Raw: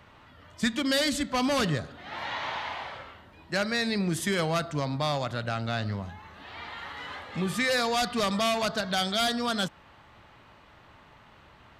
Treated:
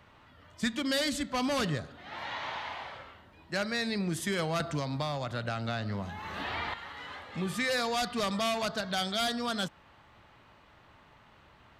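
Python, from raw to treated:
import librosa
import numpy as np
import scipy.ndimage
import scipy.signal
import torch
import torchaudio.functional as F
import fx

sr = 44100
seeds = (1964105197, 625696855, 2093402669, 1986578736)

y = fx.band_squash(x, sr, depth_pct=100, at=(4.6, 6.74))
y = y * 10.0 ** (-4.0 / 20.0)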